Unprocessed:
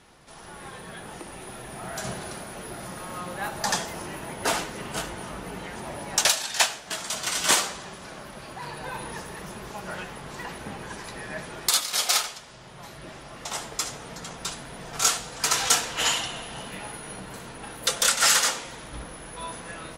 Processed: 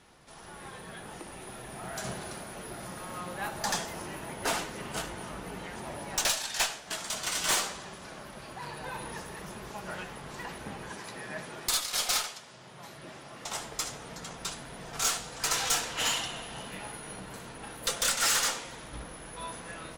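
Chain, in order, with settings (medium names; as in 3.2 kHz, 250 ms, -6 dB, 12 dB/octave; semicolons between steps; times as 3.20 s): 10.91–13.46 s: high-pass 110 Hz 12 dB/octave; valve stage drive 19 dB, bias 0.45; trim -2 dB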